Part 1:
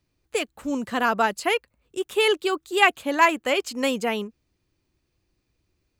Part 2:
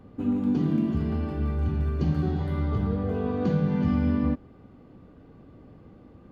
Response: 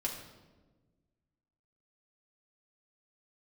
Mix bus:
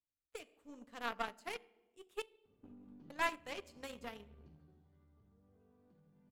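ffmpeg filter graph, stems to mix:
-filter_complex "[0:a]volume=0.119,asplit=3[s0][s1][s2];[s0]atrim=end=2.22,asetpts=PTS-STARTPTS,afade=t=out:st=2.216:d=0.004:c=hsin[s3];[s1]atrim=start=2.22:end=3.1,asetpts=PTS-STARTPTS,volume=0[s4];[s2]atrim=start=3.1,asetpts=PTS-STARTPTS,afade=t=in:d=0.004:c=hsin[s5];[s3][s4][s5]concat=n=3:v=0:a=1,asplit=3[s6][s7][s8];[s7]volume=0.596[s9];[1:a]aeval=exprs='0.211*(cos(1*acos(clip(val(0)/0.211,-1,1)))-cos(1*PI/2))+0.0188*(cos(5*acos(clip(val(0)/0.211,-1,1)))-cos(5*PI/2))':c=same,acompressor=threshold=0.0447:ratio=12,adelay=2450,volume=0.224,afade=t=out:st=4.27:d=0.6:silence=0.334965[s10];[s8]apad=whole_len=386413[s11];[s10][s11]sidechaincompress=threshold=0.00282:ratio=8:attack=5.3:release=200[s12];[2:a]atrim=start_sample=2205[s13];[s9][s13]afir=irnorm=-1:irlink=0[s14];[s6][s12][s14]amix=inputs=3:normalize=0,aeval=exprs='0.112*(cos(1*acos(clip(val(0)/0.112,-1,1)))-cos(1*PI/2))+0.0112*(cos(3*acos(clip(val(0)/0.112,-1,1)))-cos(3*PI/2))+0.00251*(cos(6*acos(clip(val(0)/0.112,-1,1)))-cos(6*PI/2))+0.00891*(cos(7*acos(clip(val(0)/0.112,-1,1)))-cos(7*PI/2))':c=same"

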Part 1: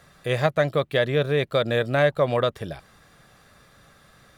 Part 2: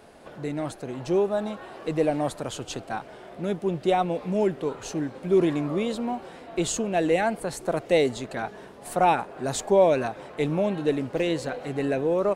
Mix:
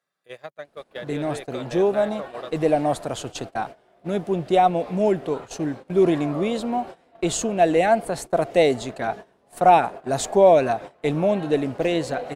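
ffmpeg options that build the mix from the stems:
-filter_complex "[0:a]highpass=280,acompressor=threshold=0.0708:ratio=8,volume=0.422[s0];[1:a]adynamicequalizer=threshold=0.00891:dfrequency=690:dqfactor=4.9:tfrequency=690:tqfactor=4.9:attack=5:release=100:ratio=0.375:range=3.5:mode=boostabove:tftype=bell,adelay=650,volume=1.33[s1];[s0][s1]amix=inputs=2:normalize=0,agate=range=0.112:threshold=0.0224:ratio=16:detection=peak"

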